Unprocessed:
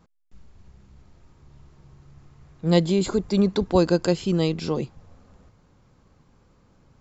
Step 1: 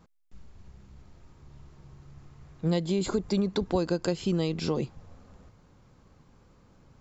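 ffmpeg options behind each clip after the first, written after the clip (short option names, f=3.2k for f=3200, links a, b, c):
-af "acompressor=threshold=-23dB:ratio=6"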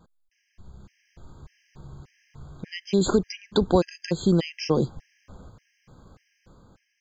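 -af "dynaudnorm=f=310:g=5:m=6dB,afftfilt=real='re*gt(sin(2*PI*1.7*pts/sr)*(1-2*mod(floor(b*sr/1024/1600),2)),0)':imag='im*gt(sin(2*PI*1.7*pts/sr)*(1-2*mod(floor(b*sr/1024/1600),2)),0)':win_size=1024:overlap=0.75,volume=1.5dB"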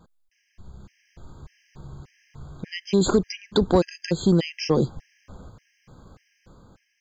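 -af "asoftclip=type=tanh:threshold=-9.5dB,volume=2.5dB"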